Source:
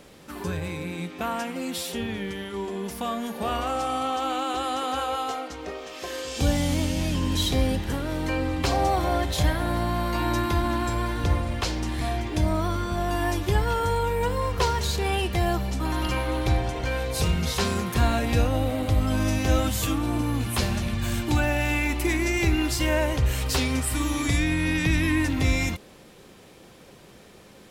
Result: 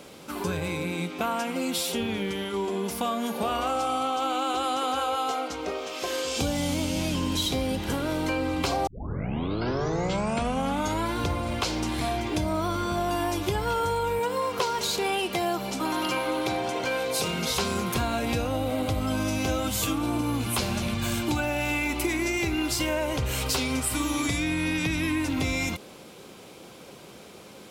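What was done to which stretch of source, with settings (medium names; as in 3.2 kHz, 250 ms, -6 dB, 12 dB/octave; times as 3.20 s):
8.87 s: tape start 2.27 s
14.19–17.50 s: high-pass 200 Hz
whole clip: high-pass 170 Hz 6 dB/octave; band-stop 1.8 kHz, Q 7.4; compression, threshold -28 dBFS; trim +4.5 dB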